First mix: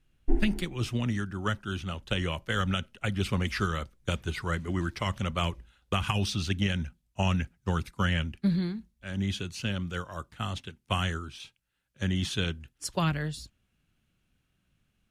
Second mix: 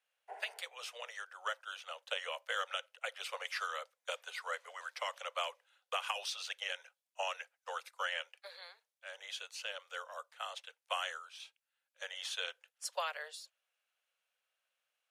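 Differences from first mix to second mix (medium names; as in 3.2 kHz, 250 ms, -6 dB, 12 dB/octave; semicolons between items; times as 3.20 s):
speech -5.5 dB; master: add steep high-pass 480 Hz 96 dB/octave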